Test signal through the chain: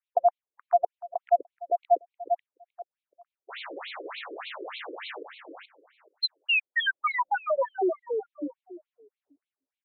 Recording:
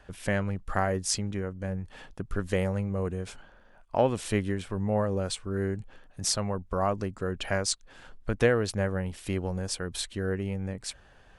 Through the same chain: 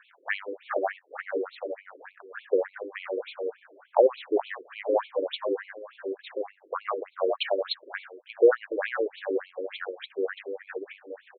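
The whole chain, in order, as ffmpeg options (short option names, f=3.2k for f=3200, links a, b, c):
-filter_complex "[0:a]asplit=2[a][b];[b]adelay=427,lowpass=f=2.2k:p=1,volume=-4.5dB,asplit=2[c][d];[d]adelay=427,lowpass=f=2.2k:p=1,volume=0.21,asplit=2[e][f];[f]adelay=427,lowpass=f=2.2k:p=1,volume=0.21[g];[c][e][g]amix=inputs=3:normalize=0[h];[a][h]amix=inputs=2:normalize=0,afftfilt=real='re*between(b*sr/1024,380*pow(3100/380,0.5+0.5*sin(2*PI*3.4*pts/sr))/1.41,380*pow(3100/380,0.5+0.5*sin(2*PI*3.4*pts/sr))*1.41)':imag='im*between(b*sr/1024,380*pow(3100/380,0.5+0.5*sin(2*PI*3.4*pts/sr))/1.41,380*pow(3100/380,0.5+0.5*sin(2*PI*3.4*pts/sr))*1.41)':win_size=1024:overlap=0.75,volume=7dB"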